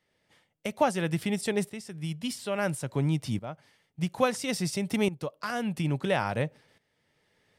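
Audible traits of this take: tremolo saw up 0.59 Hz, depth 80%

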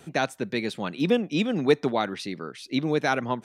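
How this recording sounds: noise floor -53 dBFS; spectral tilt -4.0 dB/octave

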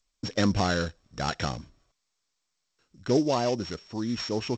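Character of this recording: a buzz of ramps at a fixed pitch in blocks of 8 samples; G.722

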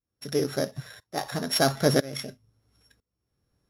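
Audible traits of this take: a buzz of ramps at a fixed pitch in blocks of 8 samples; tremolo saw up 1 Hz, depth 95%; Vorbis

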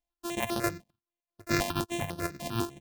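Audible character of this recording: a buzz of ramps at a fixed pitch in blocks of 128 samples; chopped level 4.7 Hz, depth 60%, duty 65%; notches that jump at a steady rate 10 Hz 370–7400 Hz

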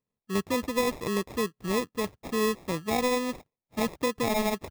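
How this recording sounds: aliases and images of a low sample rate 1.5 kHz, jitter 0%

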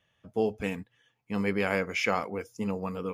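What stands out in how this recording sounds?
noise floor -75 dBFS; spectral tilt -4.5 dB/octave

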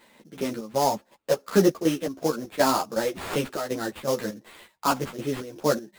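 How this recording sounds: aliases and images of a low sample rate 5.9 kHz, jitter 20%; chopped level 2.7 Hz, depth 65%, duty 60%; a shimmering, thickened sound

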